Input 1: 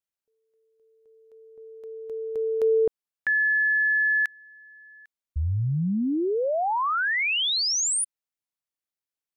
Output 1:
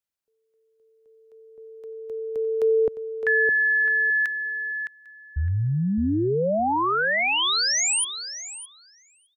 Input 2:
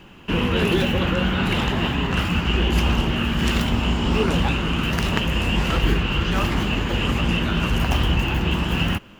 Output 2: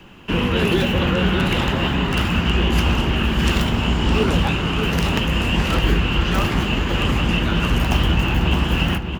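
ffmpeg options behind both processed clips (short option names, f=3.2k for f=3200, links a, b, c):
-filter_complex "[0:a]asplit=2[a][b];[b]adelay=612,lowpass=f=3.7k:p=1,volume=-7dB,asplit=2[c][d];[d]adelay=612,lowpass=f=3.7k:p=1,volume=0.16,asplit=2[e][f];[f]adelay=612,lowpass=f=3.7k:p=1,volume=0.16[g];[a][c][e][g]amix=inputs=4:normalize=0,acrossover=split=190|1100|2000[h][i][j][k];[j]aeval=exprs='(mod(15*val(0)+1,2)-1)/15':c=same[l];[h][i][l][k]amix=inputs=4:normalize=0,volume=1.5dB"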